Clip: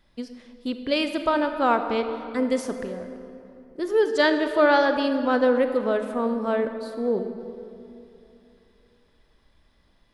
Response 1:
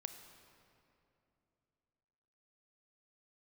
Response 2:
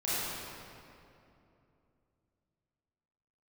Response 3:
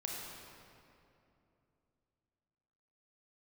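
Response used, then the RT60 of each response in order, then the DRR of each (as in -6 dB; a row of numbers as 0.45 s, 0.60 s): 1; 2.9 s, 2.8 s, 2.8 s; 7.5 dB, -11.5 dB, -2.5 dB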